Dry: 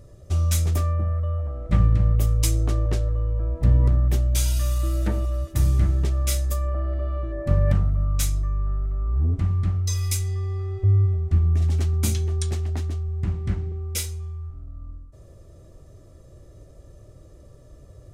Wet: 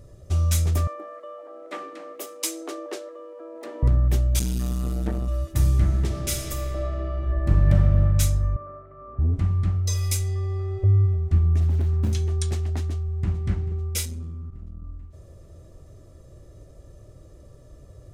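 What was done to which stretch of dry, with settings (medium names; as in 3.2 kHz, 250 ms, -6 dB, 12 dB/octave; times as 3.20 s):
0.87–3.83 s: steep high-pass 300 Hz 48 dB/octave
4.39–5.28 s: transformer saturation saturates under 260 Hz
5.81–8.02 s: reverb throw, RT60 2.9 s, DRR 2 dB
8.56–9.19 s: cabinet simulation 290–2800 Hz, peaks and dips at 350 Hz -5 dB, 560 Hz +9 dB, 820 Hz -8 dB, 1.2 kHz +4 dB, 1.7 kHz -3 dB, 2.7 kHz -7 dB
9.85–10.87 s: peaking EQ 550 Hz +10.5 dB 0.56 oct
11.60–12.13 s: median filter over 41 samples
12.82–13.45 s: echo throw 440 ms, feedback 65%, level -16 dB
14.05–14.84 s: transformer saturation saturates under 150 Hz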